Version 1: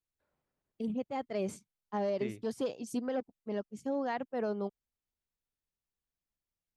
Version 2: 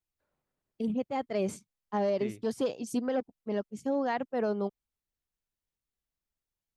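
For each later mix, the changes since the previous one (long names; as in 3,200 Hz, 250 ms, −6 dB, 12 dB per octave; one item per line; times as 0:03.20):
first voice +4.0 dB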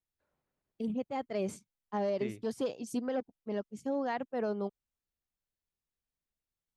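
first voice −3.5 dB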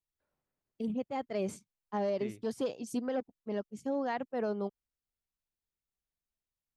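second voice −3.5 dB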